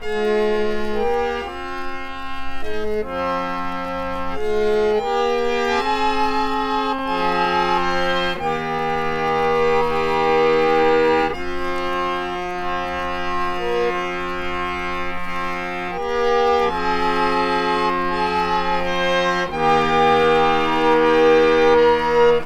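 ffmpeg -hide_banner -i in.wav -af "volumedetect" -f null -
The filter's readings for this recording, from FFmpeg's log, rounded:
mean_volume: -18.8 dB
max_volume: -4.4 dB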